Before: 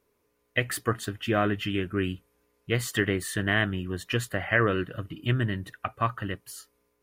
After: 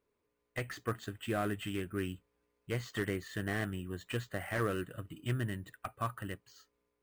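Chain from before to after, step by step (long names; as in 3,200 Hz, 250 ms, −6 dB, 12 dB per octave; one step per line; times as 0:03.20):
bad sample-rate conversion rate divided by 4×, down filtered, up hold
slew-rate limiting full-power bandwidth 120 Hz
level −8.5 dB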